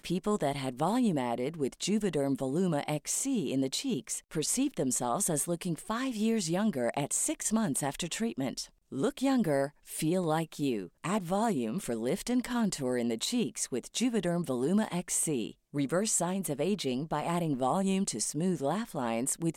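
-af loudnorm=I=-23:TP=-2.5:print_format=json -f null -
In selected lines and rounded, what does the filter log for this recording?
"input_i" : "-31.2",
"input_tp" : "-16.8",
"input_lra" : "0.9",
"input_thresh" : "-41.2",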